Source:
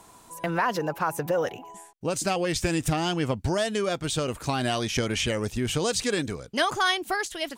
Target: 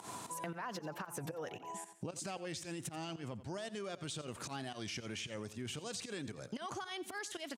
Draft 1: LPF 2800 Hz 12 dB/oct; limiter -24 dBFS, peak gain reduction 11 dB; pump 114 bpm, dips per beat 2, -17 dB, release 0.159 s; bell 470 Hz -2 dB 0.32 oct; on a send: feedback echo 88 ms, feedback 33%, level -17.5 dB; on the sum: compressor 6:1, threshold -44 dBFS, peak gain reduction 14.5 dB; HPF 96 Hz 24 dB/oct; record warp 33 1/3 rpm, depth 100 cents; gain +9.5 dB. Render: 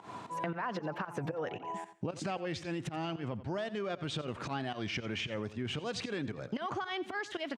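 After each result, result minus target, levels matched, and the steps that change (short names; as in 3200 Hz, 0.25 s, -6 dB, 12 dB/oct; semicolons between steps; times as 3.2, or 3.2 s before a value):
8000 Hz band -12.5 dB; compressor: peak gain reduction -6 dB
change: LPF 11000 Hz 12 dB/oct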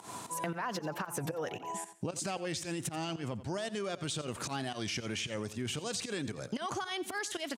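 compressor: peak gain reduction -6 dB
change: compressor 6:1, threshold -51.5 dBFS, peak gain reduction 20.5 dB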